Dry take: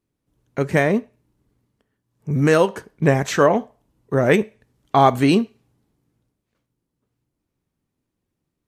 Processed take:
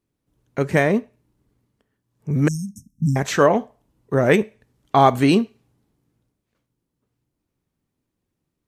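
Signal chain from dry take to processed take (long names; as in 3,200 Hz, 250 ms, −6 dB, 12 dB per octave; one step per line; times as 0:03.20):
0:02.48–0:03.16: linear-phase brick-wall band-stop 280–5,200 Hz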